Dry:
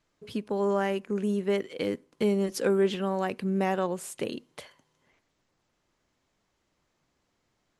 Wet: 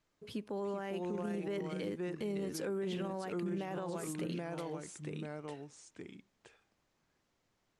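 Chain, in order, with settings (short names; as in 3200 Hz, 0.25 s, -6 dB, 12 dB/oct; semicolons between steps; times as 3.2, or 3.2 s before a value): echoes that change speed 0.34 s, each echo -2 st, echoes 2, each echo -6 dB; limiter -25 dBFS, peak gain reduction 11.5 dB; gain -5 dB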